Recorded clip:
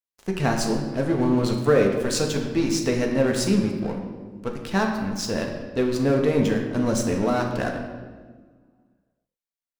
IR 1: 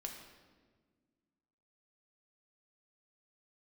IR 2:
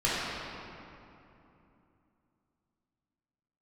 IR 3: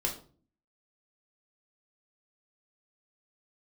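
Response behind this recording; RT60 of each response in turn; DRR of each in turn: 1; 1.5, 2.9, 0.45 s; 1.0, -10.0, 0.5 dB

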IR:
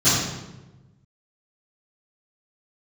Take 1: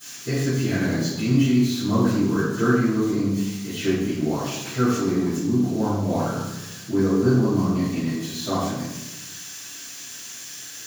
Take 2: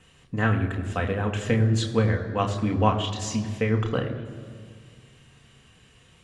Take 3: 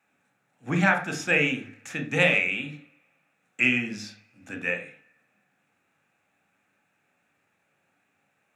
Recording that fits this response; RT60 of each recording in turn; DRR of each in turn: 1; 1.1, 2.0, 0.40 s; -20.0, 2.0, 5.0 dB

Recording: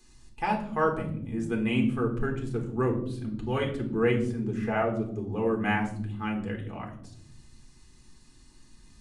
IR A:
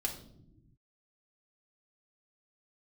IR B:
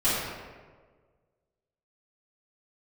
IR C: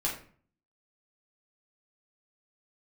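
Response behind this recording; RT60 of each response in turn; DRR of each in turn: A; not exponential, 1.5 s, 0.45 s; 0.5, -14.0, -4.5 dB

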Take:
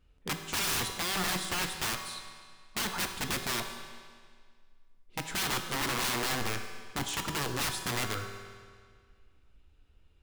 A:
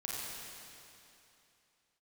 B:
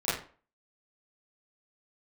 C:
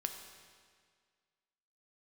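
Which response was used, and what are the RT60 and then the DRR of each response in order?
C; 2.8, 0.40, 1.9 s; -6.0, -14.5, 5.0 dB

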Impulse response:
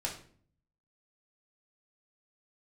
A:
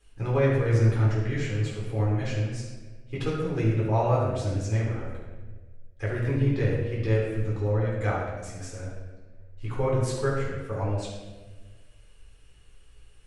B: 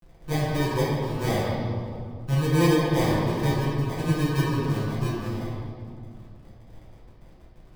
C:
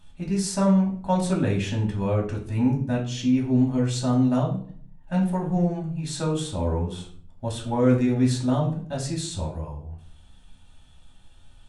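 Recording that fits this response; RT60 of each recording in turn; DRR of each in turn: C; 1.4, 2.2, 0.50 s; -6.0, -9.5, -2.5 dB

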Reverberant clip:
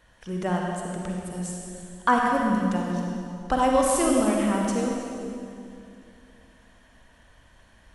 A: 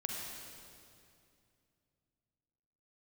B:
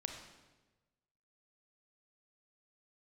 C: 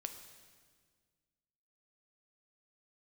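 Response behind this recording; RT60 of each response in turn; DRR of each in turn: A; 2.5, 1.2, 1.7 s; -1.0, 3.5, 6.0 dB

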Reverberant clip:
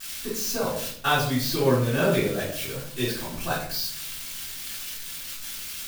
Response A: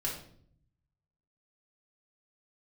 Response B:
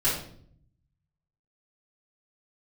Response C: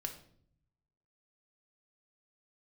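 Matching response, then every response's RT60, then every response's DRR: B; 0.60, 0.60, 0.60 s; -4.5, -12.0, 4.0 dB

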